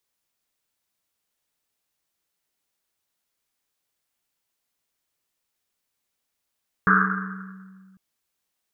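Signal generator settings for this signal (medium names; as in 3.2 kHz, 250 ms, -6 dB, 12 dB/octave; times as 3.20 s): Risset drum, pitch 190 Hz, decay 2.25 s, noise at 1.4 kHz, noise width 510 Hz, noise 60%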